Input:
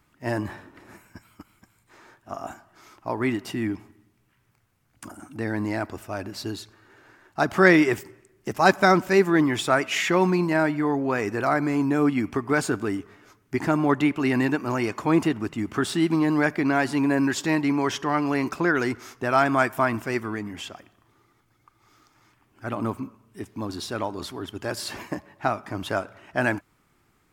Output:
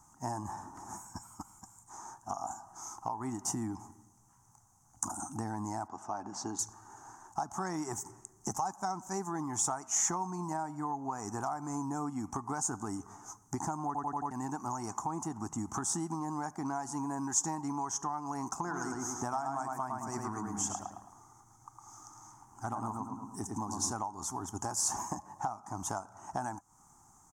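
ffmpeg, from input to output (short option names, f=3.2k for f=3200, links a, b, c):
-filter_complex "[0:a]asettb=1/sr,asplit=3[a][b][c];[a]atrim=end=5.884[d];[b]atrim=start=5.88:end=6.59,asetpts=PTS-STARTPTS,afade=t=in:d=0.004:c=qsin,afade=t=out:st=0.706:d=0.004:c=qsin,highpass=200,lowpass=3.5k[e];[c]atrim=start=6.586[f];[d][e]acrossfade=d=0.004:c1=hsin:c2=qsin[g];[g][f]acrossfade=d=0.004:c1=qsin:c2=hsin,asplit=3[h][i][j];[h]afade=t=out:st=18.65:d=0.02[k];[i]asplit=2[l][m];[m]adelay=108,lowpass=f=3.3k:p=1,volume=-3dB,asplit=2[n][o];[o]adelay=108,lowpass=f=3.3k:p=1,volume=0.38,asplit=2[p][q];[q]adelay=108,lowpass=f=3.3k:p=1,volume=0.38,asplit=2[r][s];[s]adelay=108,lowpass=f=3.3k:p=1,volume=0.38,asplit=2[t][u];[u]adelay=108,lowpass=f=3.3k:p=1,volume=0.38[v];[l][n][p][r][t][v]amix=inputs=6:normalize=0,afade=t=in:st=18.65:d=0.02,afade=t=out:st=23.91:d=0.02[w];[j]afade=t=in:st=23.91:d=0.02[x];[k][w][x]amix=inputs=3:normalize=0,asplit=6[y][z][aa][ab][ac][ad];[y]atrim=end=13.952[ae];[z]atrim=start=13.858:end=13.952[af];[aa]atrim=start=13.858:end=13.952[ag];[ab]atrim=start=13.858:end=13.952[ah];[ac]atrim=start=13.858:end=13.952[ai];[ad]atrim=start=14.308[aj];[ae][af]acrossfade=d=0.004:c1=hsin:c2=hsin[ak];[ak][ag]acrossfade=d=0.004:c1=hsin:c2=hsin[al];[al][ah]acrossfade=d=0.004:c1=hsin:c2=hsin[am];[am][ai]acrossfade=d=0.004:c1=hsin:c2=hsin[an];[an][aj]acrossfade=d=0.004:c1=hsin:c2=hsin,firequalizer=gain_entry='entry(220,0);entry(370,-6);entry(540,-12);entry(800,14);entry(1600,-6);entry(4000,-30);entry(6200,9);entry(13000,-9)':delay=0.05:min_phase=1,acompressor=threshold=-34dB:ratio=6,highshelf=f=3.1k:t=q:w=3:g=7.5"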